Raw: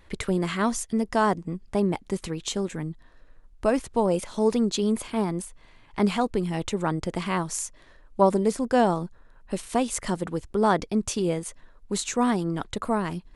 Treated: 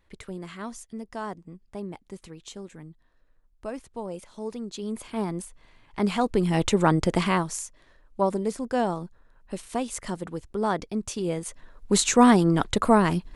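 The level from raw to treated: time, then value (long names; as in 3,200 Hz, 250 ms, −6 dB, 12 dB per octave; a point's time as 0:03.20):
0:04.65 −12 dB
0:05.24 −2.5 dB
0:06.02 −2.5 dB
0:06.59 +6 dB
0:07.22 +6 dB
0:07.65 −4.5 dB
0:11.15 −4.5 dB
0:11.94 +7 dB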